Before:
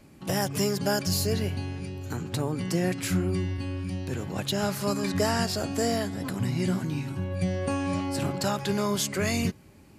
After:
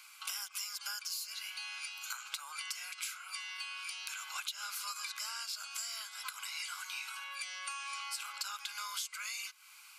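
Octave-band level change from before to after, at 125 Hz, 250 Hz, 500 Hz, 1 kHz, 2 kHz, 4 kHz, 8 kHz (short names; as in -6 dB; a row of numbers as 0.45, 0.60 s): under -40 dB, under -40 dB, under -40 dB, -11.0 dB, -5.0 dB, -4.5 dB, -5.5 dB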